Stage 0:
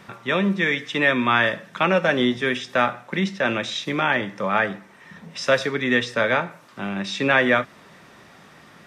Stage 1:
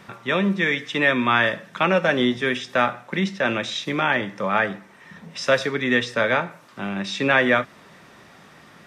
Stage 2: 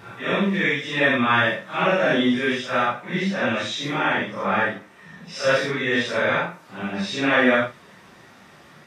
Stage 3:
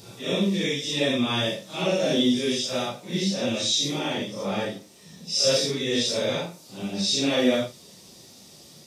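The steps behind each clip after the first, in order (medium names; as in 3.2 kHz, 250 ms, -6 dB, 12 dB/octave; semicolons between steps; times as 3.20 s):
no audible change
phase randomisation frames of 200 ms
FFT filter 510 Hz 0 dB, 1.6 kHz -17 dB, 4.7 kHz +13 dB; trim -1.5 dB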